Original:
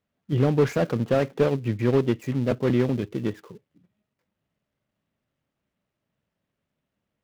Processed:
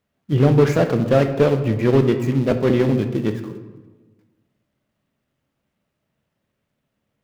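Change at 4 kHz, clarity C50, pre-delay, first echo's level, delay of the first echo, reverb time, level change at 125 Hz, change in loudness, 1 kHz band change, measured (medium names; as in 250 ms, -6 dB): +5.5 dB, 9.5 dB, 10 ms, no echo, no echo, 1.3 s, +6.5 dB, +6.0 dB, +6.0 dB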